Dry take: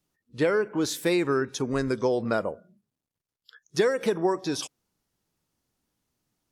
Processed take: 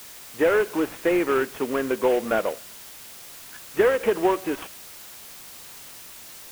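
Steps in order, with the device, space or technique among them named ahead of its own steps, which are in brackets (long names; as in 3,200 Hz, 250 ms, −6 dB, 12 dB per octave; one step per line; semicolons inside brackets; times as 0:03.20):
army field radio (band-pass filter 320–3,200 Hz; variable-slope delta modulation 16 kbit/s; white noise bed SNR 17 dB)
level +5.5 dB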